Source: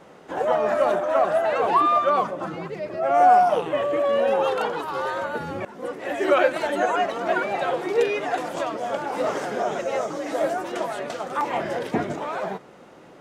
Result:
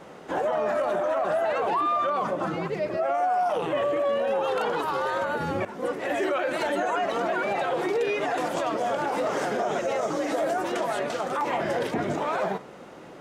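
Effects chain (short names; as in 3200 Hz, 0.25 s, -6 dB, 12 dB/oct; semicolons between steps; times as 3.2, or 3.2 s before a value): 2.97–3.56 HPF 340 Hz 6 dB/oct; limiter -21.5 dBFS, peak gain reduction 14 dB; reverb, pre-delay 40 ms, DRR 19 dB; gain +3 dB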